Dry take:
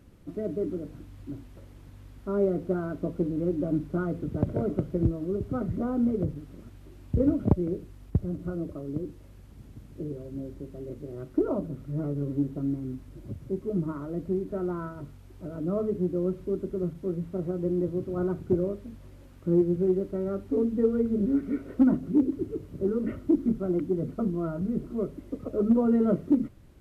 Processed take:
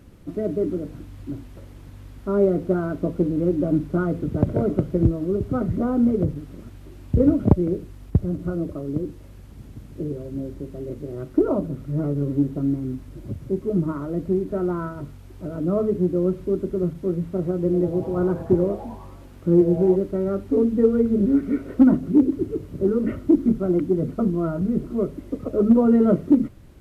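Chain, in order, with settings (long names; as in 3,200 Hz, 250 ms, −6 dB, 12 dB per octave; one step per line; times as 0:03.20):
0:17.60–0:19.96: echo with shifted repeats 99 ms, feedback 56%, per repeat +150 Hz, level −16 dB
level +6.5 dB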